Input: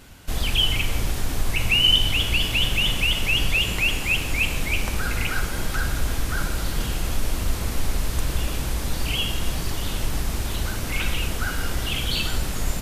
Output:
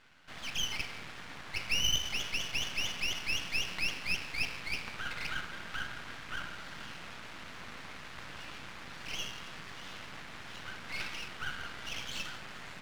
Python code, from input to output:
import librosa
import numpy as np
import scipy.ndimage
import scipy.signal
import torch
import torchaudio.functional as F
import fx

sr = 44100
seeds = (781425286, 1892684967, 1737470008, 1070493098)

y = scipy.signal.sosfilt(scipy.signal.cheby1(2, 1.0, [160.0, 1800.0], 'bandpass', fs=sr, output='sos'), x)
y = fx.tilt_shelf(y, sr, db=-8.5, hz=1200.0)
y = np.maximum(y, 0.0)
y = fx.peak_eq(y, sr, hz=380.0, db=-3.5, octaves=1.6)
y = F.gain(torch.from_numpy(y), -4.5).numpy()